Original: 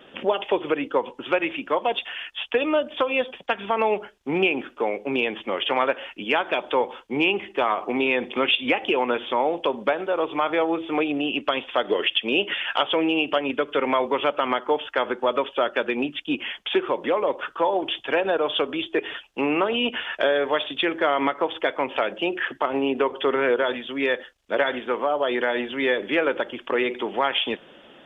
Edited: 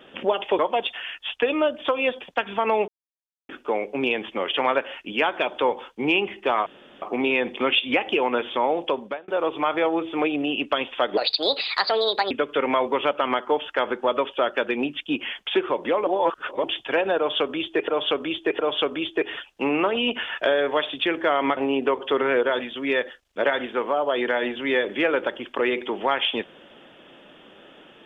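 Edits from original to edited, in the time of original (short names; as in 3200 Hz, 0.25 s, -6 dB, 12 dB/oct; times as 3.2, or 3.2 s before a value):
0.59–1.71 cut
4–4.61 mute
7.78 insert room tone 0.36 s
9.64–10.04 fade out
11.93–13.5 speed 138%
17.26–17.83 reverse
18.36–19.07 loop, 3 plays
21.34–22.7 cut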